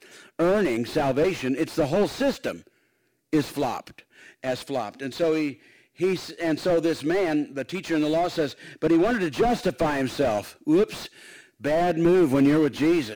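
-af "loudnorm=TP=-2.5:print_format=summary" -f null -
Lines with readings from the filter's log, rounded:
Input Integrated:    -24.0 LUFS
Input True Peak:      -8.9 dBTP
Input LRA:             6.3 LU
Input Threshold:     -34.6 LUFS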